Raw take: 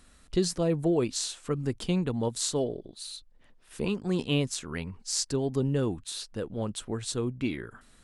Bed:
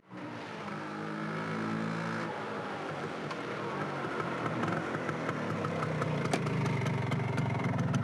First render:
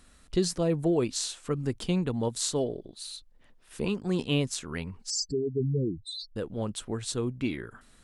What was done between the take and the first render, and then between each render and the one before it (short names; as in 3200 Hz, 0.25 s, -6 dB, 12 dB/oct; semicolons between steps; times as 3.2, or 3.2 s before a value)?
5.1–6.36 spectral contrast raised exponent 3.9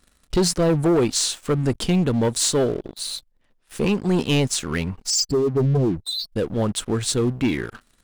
sample leveller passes 3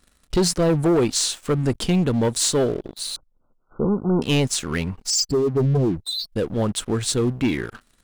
3.16–4.22 brick-wall FIR low-pass 1500 Hz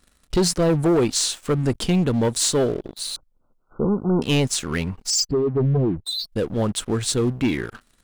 5.27–6.06 air absorption 390 m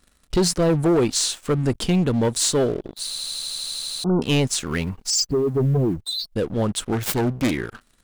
3.08 stutter in place 0.08 s, 12 plays; 4.66–6.34 block floating point 7-bit; 6.92–7.51 self-modulated delay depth 0.37 ms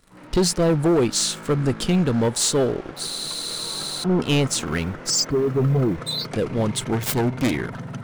add bed -2.5 dB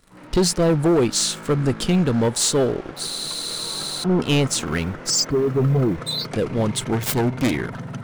gain +1 dB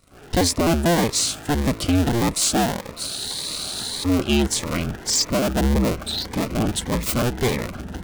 cycle switcher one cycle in 2, inverted; cascading phaser rising 1.7 Hz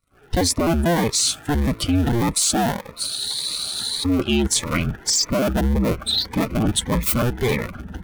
per-bin expansion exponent 1.5; in parallel at 0 dB: negative-ratio compressor -26 dBFS, ratio -0.5